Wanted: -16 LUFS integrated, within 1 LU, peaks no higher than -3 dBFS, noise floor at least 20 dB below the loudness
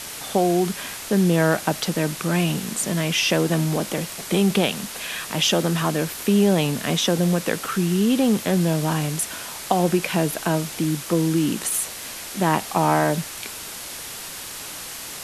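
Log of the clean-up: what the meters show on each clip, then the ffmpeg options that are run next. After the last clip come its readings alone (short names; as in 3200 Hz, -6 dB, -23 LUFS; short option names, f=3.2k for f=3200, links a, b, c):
noise floor -35 dBFS; noise floor target -43 dBFS; loudness -22.5 LUFS; peak -4.5 dBFS; loudness target -16.0 LUFS
-> -af "afftdn=nr=8:nf=-35"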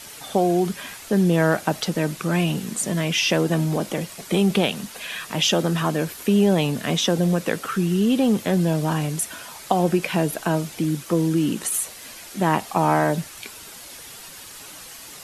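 noise floor -41 dBFS; noise floor target -42 dBFS
-> -af "afftdn=nr=6:nf=-41"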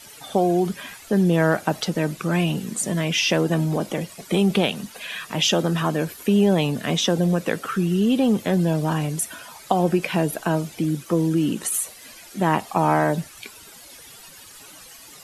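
noise floor -45 dBFS; loudness -22.0 LUFS; peak -5.0 dBFS; loudness target -16.0 LUFS
-> -af "volume=6dB,alimiter=limit=-3dB:level=0:latency=1"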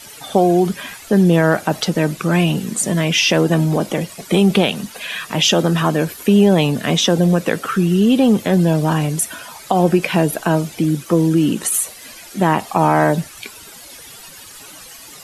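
loudness -16.5 LUFS; peak -3.0 dBFS; noise floor -39 dBFS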